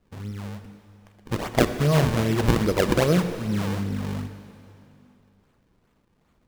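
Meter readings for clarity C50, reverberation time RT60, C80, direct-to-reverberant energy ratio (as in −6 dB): 9.5 dB, 2.8 s, 10.0 dB, 8.5 dB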